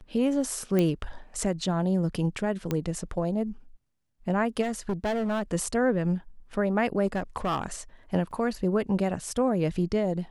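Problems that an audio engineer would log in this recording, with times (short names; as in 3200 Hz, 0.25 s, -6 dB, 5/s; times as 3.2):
0.79 pop -13 dBFS
2.71 pop -14 dBFS
4.61–5.43 clipped -24 dBFS
7.06–7.66 clipped -23 dBFS
8.31 gap 2.5 ms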